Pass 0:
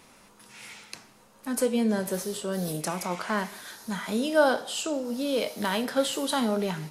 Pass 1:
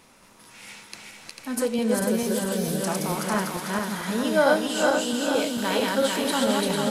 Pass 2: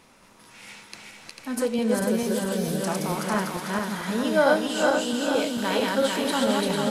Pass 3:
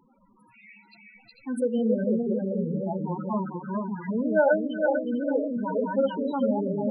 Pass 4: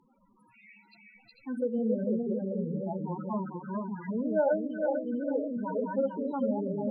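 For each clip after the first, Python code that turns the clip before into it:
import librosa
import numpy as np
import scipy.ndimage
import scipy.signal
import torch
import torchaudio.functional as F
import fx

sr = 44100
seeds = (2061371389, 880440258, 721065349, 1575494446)

y1 = fx.reverse_delay_fb(x, sr, ms=223, feedback_pct=69, wet_db=-1.0)
y1 = fx.echo_wet_highpass(y1, sr, ms=372, feedback_pct=57, hz=1500.0, wet_db=-8.0)
y2 = fx.high_shelf(y1, sr, hz=6800.0, db=-5.0)
y3 = fx.spec_topn(y2, sr, count=8)
y4 = fx.env_lowpass_down(y3, sr, base_hz=960.0, full_db=-22.0)
y4 = y4 * librosa.db_to_amplitude(-4.5)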